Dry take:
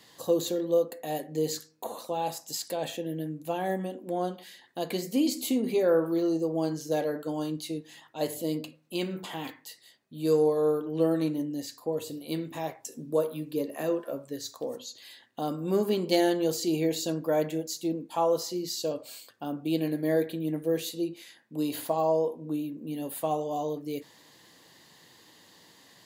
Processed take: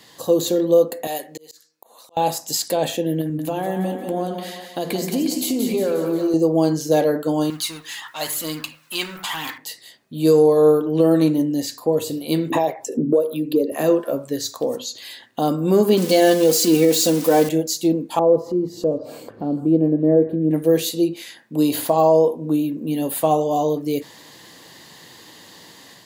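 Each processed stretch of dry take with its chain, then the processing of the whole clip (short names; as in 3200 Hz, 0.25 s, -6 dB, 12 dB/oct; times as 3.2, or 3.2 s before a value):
1.07–2.17 HPF 1200 Hz 6 dB/oct + auto swell 0.758 s
3.21–6.34 compressor 4:1, threshold -32 dBFS + split-band echo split 460 Hz, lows 84 ms, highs 0.178 s, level -7 dB
7.5–9.58 G.711 law mismatch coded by mu + resonant low shelf 780 Hz -13.5 dB, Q 1.5 + phaser 1 Hz, delay 2.6 ms, feedback 34%
12.5–13.72 formant sharpening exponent 1.5 + HPF 190 Hz 6 dB/oct + three-band squash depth 100%
15.97–17.49 switching spikes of -26.5 dBFS + high shelf 11000 Hz -7.5 dB + comb 4 ms, depth 58%
18.19–20.51 EQ curve 480 Hz 0 dB, 2600 Hz -25 dB, 3800 Hz -30 dB + upward compressor, threshold -33 dBFS + delay with a stepping band-pass 0.155 s, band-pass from 1400 Hz, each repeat 1.4 oct, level -10 dB
whole clip: dynamic EQ 2000 Hz, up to -3 dB, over -44 dBFS, Q 0.73; AGC gain up to 4.5 dB; maximiser +12.5 dB; gain -5 dB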